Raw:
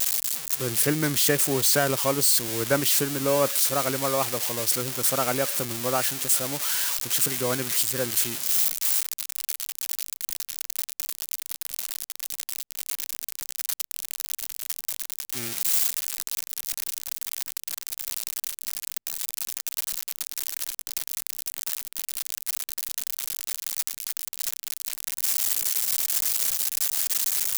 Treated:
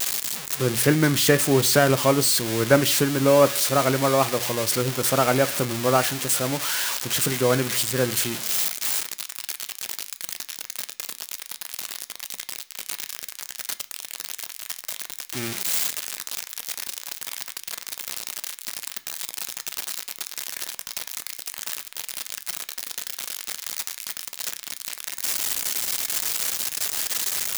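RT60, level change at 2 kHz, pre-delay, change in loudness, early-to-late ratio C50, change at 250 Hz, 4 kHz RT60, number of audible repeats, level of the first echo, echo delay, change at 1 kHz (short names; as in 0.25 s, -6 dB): 0.45 s, +5.0 dB, 3 ms, +1.0 dB, 18.0 dB, +7.0 dB, 0.45 s, none, none, none, +5.5 dB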